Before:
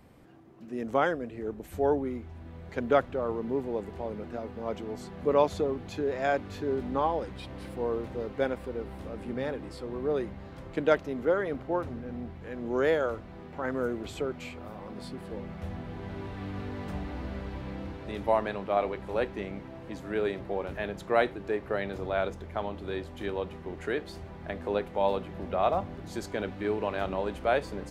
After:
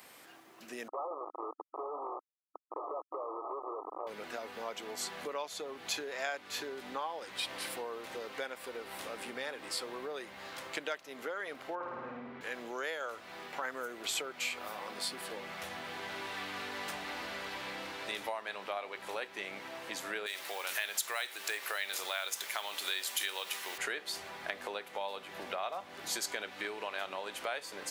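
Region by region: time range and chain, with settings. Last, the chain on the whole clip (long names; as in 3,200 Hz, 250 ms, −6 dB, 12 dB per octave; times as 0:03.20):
0:00.88–0:04.07: comparator with hysteresis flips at −36 dBFS + linear-phase brick-wall band-pass 290–1,300 Hz
0:11.75–0:12.41: low-pass filter 1,900 Hz + flutter between parallel walls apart 9.2 metres, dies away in 0.98 s
0:20.26–0:23.78: spectral tilt +4.5 dB per octave + downward compressor 1.5 to 1, threshold −39 dBFS + noise that follows the level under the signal 30 dB
whole clip: spectral tilt +2.5 dB per octave; downward compressor 6 to 1, threshold −39 dBFS; high-pass filter 1,200 Hz 6 dB per octave; level +9 dB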